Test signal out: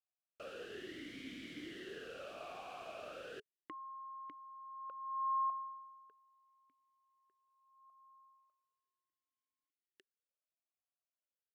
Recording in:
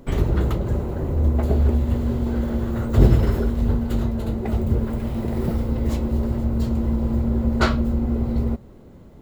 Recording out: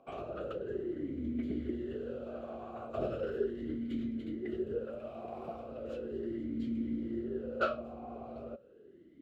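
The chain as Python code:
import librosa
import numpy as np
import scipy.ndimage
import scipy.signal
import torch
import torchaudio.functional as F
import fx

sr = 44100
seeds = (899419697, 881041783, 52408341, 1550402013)

y = fx.vowel_sweep(x, sr, vowels='a-i', hz=0.37)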